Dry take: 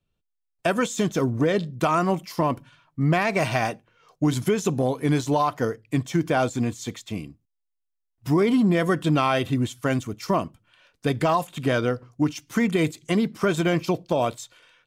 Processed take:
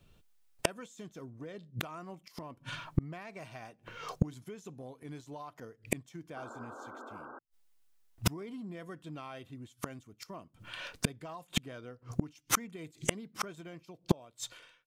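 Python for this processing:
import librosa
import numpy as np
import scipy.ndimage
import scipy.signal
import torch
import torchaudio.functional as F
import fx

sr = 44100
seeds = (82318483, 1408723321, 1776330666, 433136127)

y = fx.fade_out_tail(x, sr, length_s=1.45)
y = fx.spec_paint(y, sr, seeds[0], shape='noise', start_s=6.36, length_s=1.03, low_hz=220.0, high_hz=1600.0, level_db=-24.0)
y = fx.gate_flip(y, sr, shuts_db=-27.0, range_db=-38)
y = y * librosa.db_to_amplitude(14.5)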